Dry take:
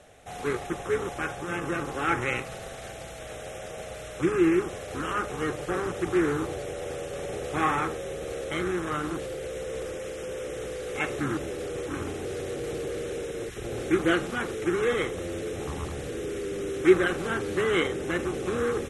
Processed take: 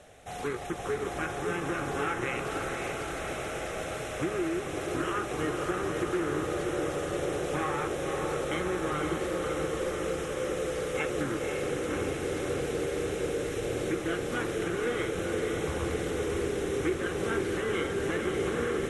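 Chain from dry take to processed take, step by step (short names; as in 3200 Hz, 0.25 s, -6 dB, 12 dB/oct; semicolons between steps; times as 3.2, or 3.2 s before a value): compressor, threshold -29 dBFS, peak gain reduction 16 dB; on a send: diffused feedback echo 0.536 s, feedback 75%, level -4 dB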